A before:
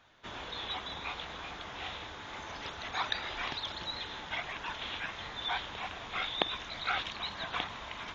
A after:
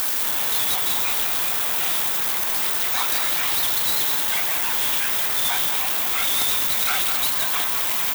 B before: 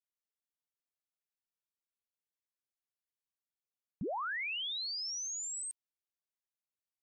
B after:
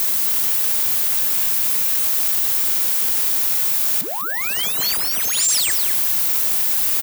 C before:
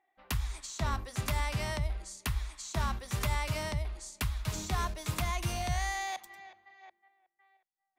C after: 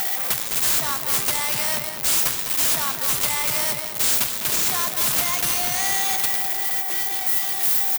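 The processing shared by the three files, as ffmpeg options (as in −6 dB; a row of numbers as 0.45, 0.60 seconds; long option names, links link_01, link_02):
-filter_complex "[0:a]aeval=exprs='val(0)+0.5*0.0251*sgn(val(0))':channel_layout=same,highpass=frequency=120:width=0.5412,highpass=frequency=120:width=1.3066,aemphasis=mode=production:type=riaa,acompressor=mode=upward:threshold=-27dB:ratio=2.5,aeval=exprs='0.112*(abs(mod(val(0)/0.112+3,4)-2)-1)':channel_layout=same,asplit=2[link_01][link_02];[link_02]adelay=204.1,volume=-7dB,highshelf=frequency=4000:gain=-4.59[link_03];[link_01][link_03]amix=inputs=2:normalize=0,volume=5.5dB"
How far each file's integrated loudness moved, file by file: +18.5, +21.0, +15.5 LU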